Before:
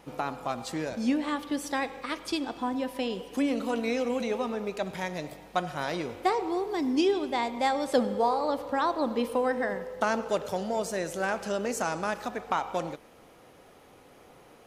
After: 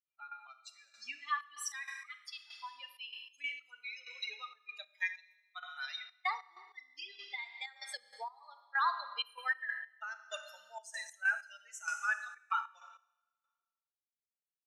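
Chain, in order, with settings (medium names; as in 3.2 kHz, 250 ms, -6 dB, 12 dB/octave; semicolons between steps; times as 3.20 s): expander on every frequency bin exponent 3; high-pass 1.5 kHz 24 dB/octave; tilt EQ -2.5 dB/octave; peak limiter -38 dBFS, peak gain reduction 8.5 dB; low-pass 9.1 kHz 12 dB/octave; Schroeder reverb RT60 1.2 s, combs from 27 ms, DRR 8.5 dB; trance gate "x.x...xxx." 96 bpm -12 dB; 6.34–8.64 s: compression 5:1, threshold -56 dBFS, peak gain reduction 11.5 dB; trim +15.5 dB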